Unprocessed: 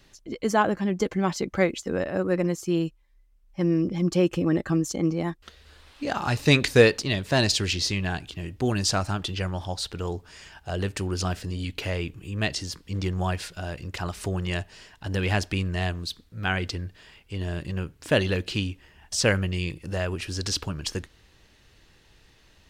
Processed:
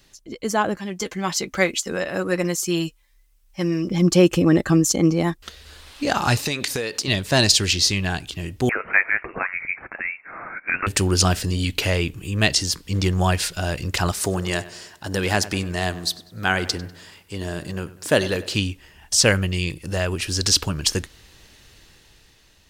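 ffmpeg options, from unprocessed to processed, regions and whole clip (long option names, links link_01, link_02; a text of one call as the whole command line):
ffmpeg -i in.wav -filter_complex "[0:a]asettb=1/sr,asplit=3[link_01][link_02][link_03];[link_01]atrim=end=0.774[link_04];[link_02]atrim=start=0.77:end=3.91,asetpts=PTS-STARTPTS,afade=type=in:duration=0.004:curve=qsin,afade=type=out:start_time=3.136:duration=0.004:curve=qsin,tiltshelf=frequency=860:gain=-4.5,flanger=delay=4.9:depth=1.4:regen=-59:speed=1:shape=triangular[link_05];[link_03]atrim=start=3.906[link_06];[link_04][link_05]acrossfade=duration=0.004:curve1=hsin:curve2=qsin[link_07];[link_07][link_06]acrossfade=duration=0.004:curve1=qsin:curve2=hsin,asettb=1/sr,asplit=3[link_08][link_09][link_10];[link_08]atrim=end=6.394[link_11];[link_09]atrim=start=6.39:end=7.08,asetpts=PTS-STARTPTS,afade=type=in:duration=0.004:curve=qsin,afade=type=out:start_time=0.686:duration=0.004:curve=qsin,highpass=frequency=210:poles=1,acompressor=threshold=-27dB:ratio=8:attack=3.2:release=140:knee=1:detection=peak[link_12];[link_10]atrim=start=7.076[link_13];[link_11][link_12]acrossfade=duration=0.004:curve1=hsin:curve2=qsin[link_14];[link_14][link_13]acrossfade=duration=0.004:curve1=qsin:curve2=hsin,asettb=1/sr,asplit=3[link_15][link_16][link_17];[link_15]atrim=end=8.694[link_18];[link_16]atrim=start=8.69:end=10.87,asetpts=PTS-STARTPTS,afade=type=in:duration=0.004:curve=qsin,afade=type=out:start_time=2.176:duration=0.004:curve=qsin,highpass=frequency=860:width=0.5412,highpass=frequency=860:width=1.3066,acontrast=75,lowpass=frequency=2600:width_type=q:width=0.5098,lowpass=frequency=2600:width_type=q:width=0.6013,lowpass=frequency=2600:width_type=q:width=0.9,lowpass=frequency=2600:width_type=q:width=2.563,afreqshift=-3100[link_19];[link_17]atrim=start=10.866[link_20];[link_18][link_19]acrossfade=duration=0.004:curve1=hsin:curve2=qsin[link_21];[link_21][link_20]acrossfade=duration=0.004:curve1=qsin:curve2=hsin,asettb=1/sr,asplit=3[link_22][link_23][link_24];[link_22]atrim=end=14.124[link_25];[link_23]atrim=start=14.12:end=18.55,asetpts=PTS-STARTPTS,afade=type=in:duration=0.004:curve=qsin,afade=type=out:start_time=4.426:duration=0.004:curve=qsin,highpass=frequency=210:poles=1,equalizer=frequency=2700:width_type=o:width=0.91:gain=-6,asplit=2[link_26][link_27];[link_27]adelay=98,lowpass=frequency=3400:poles=1,volume=-16dB,asplit=2[link_28][link_29];[link_29]adelay=98,lowpass=frequency=3400:poles=1,volume=0.51,asplit=2[link_30][link_31];[link_31]adelay=98,lowpass=frequency=3400:poles=1,volume=0.51,asplit=2[link_32][link_33];[link_33]adelay=98,lowpass=frequency=3400:poles=1,volume=0.51,asplit=2[link_34][link_35];[link_35]adelay=98,lowpass=frequency=3400:poles=1,volume=0.51[link_36];[link_26][link_28][link_30][link_32][link_34][link_36]amix=inputs=6:normalize=0,atrim=end_sample=195363[link_37];[link_24]atrim=start=18.546[link_38];[link_25][link_37]acrossfade=duration=0.004:curve1=hsin:curve2=qsin[link_39];[link_39][link_38]acrossfade=duration=0.004:curve1=qsin:curve2=hsin,highshelf=frequency=4500:gain=9,dynaudnorm=framelen=230:gausssize=9:maxgain=11.5dB,volume=-1dB" out.wav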